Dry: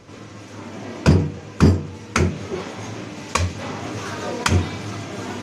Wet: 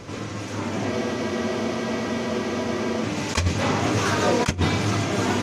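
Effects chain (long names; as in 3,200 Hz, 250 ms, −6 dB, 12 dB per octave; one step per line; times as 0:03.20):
compressor whose output falls as the input rises −23 dBFS, ratio −0.5
frozen spectrum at 0:00.92, 2.12 s
level +3 dB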